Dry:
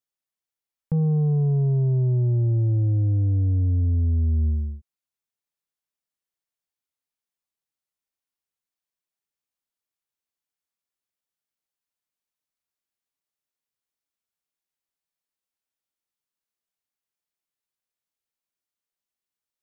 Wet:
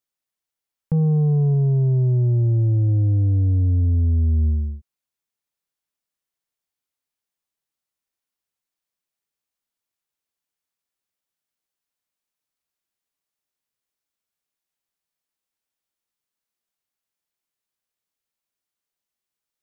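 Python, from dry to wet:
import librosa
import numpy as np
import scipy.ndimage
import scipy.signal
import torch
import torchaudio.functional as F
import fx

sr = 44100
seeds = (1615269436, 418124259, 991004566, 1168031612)

y = fx.air_absorb(x, sr, metres=370.0, at=(1.54, 2.89))
y = y * 10.0 ** (3.0 / 20.0)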